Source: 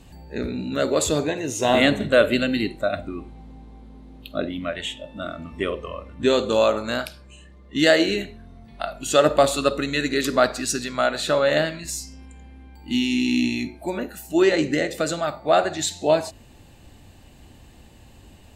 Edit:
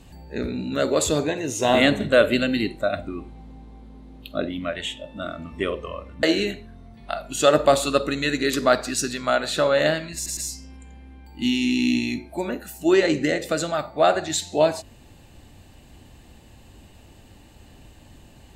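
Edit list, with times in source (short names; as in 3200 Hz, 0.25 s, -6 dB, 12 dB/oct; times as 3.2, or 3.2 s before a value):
6.23–7.94 cut
11.86 stutter 0.11 s, 3 plays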